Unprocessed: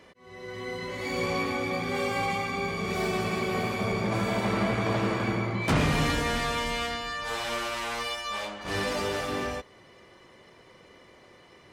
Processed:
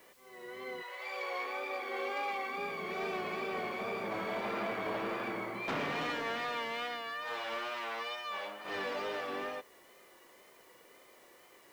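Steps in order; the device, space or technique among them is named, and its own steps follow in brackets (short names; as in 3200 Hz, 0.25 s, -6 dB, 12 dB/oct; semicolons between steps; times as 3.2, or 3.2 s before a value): tape answering machine (BPF 340–3300 Hz; soft clip -22.5 dBFS, distortion -20 dB; wow and flutter; white noise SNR 27 dB); 0.81–2.56 HPF 640 Hz -> 230 Hz 24 dB/oct; gain -5 dB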